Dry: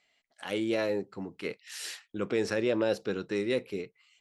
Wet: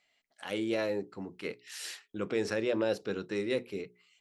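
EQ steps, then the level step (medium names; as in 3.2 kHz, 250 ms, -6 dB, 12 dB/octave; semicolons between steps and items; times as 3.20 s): hum notches 60/120/180/240/300/360/420 Hz; -2.0 dB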